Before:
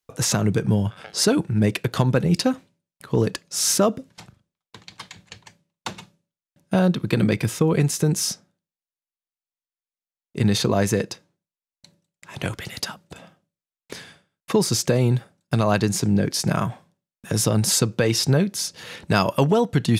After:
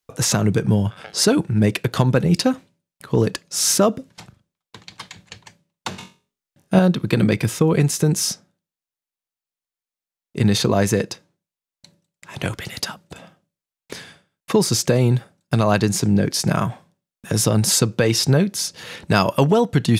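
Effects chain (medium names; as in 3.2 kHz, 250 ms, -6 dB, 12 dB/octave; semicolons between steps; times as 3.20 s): 5.89–6.79 s: flutter echo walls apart 3.7 m, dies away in 0.31 s; trim +2.5 dB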